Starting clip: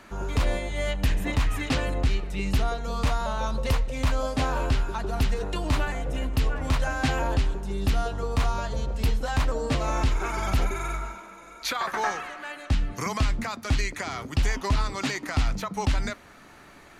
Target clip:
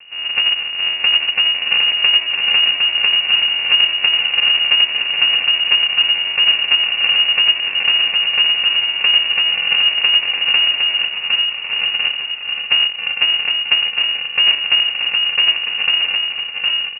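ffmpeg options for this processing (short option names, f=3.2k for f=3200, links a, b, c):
-af "aresample=8000,acrusher=samples=25:mix=1:aa=0.000001,aresample=44100,aecho=1:1:760|1292|1664|1925|2108:0.631|0.398|0.251|0.158|0.1,lowpass=f=2.5k:t=q:w=0.5098,lowpass=f=2.5k:t=q:w=0.6013,lowpass=f=2.5k:t=q:w=0.9,lowpass=f=2.5k:t=q:w=2.563,afreqshift=-2900,volume=7dB"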